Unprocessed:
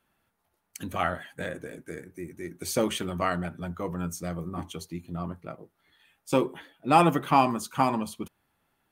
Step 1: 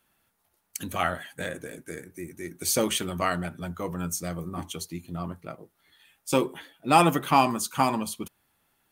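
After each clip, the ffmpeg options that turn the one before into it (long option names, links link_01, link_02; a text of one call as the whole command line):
ffmpeg -i in.wav -af "highshelf=frequency=3300:gain=9" out.wav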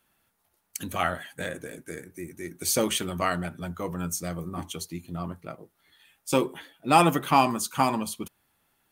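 ffmpeg -i in.wav -af anull out.wav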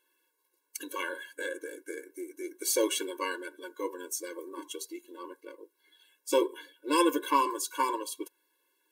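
ffmpeg -i in.wav -af "afftfilt=real='re*eq(mod(floor(b*sr/1024/290),2),1)':imag='im*eq(mod(floor(b*sr/1024/290),2),1)':win_size=1024:overlap=0.75" out.wav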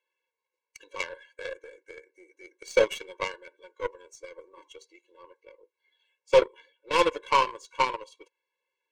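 ffmpeg -i in.wav -af "asoftclip=type=tanh:threshold=-15.5dB,highpass=frequency=460:width=0.5412,highpass=frequency=460:width=1.3066,equalizer=frequency=500:width_type=q:width=4:gain=6,equalizer=frequency=740:width_type=q:width=4:gain=7,equalizer=frequency=1400:width_type=q:width=4:gain=-9,equalizer=frequency=2300:width_type=q:width=4:gain=9,equalizer=frequency=3700:width_type=q:width=4:gain=-4,equalizer=frequency=5200:width_type=q:width=4:gain=-5,lowpass=frequency=6000:width=0.5412,lowpass=frequency=6000:width=1.3066,aeval=exprs='0.211*(cos(1*acos(clip(val(0)/0.211,-1,1)))-cos(1*PI/2))+0.0075*(cos(4*acos(clip(val(0)/0.211,-1,1)))-cos(4*PI/2))+0.0237*(cos(7*acos(clip(val(0)/0.211,-1,1)))-cos(7*PI/2))':channel_layout=same,volume=5dB" out.wav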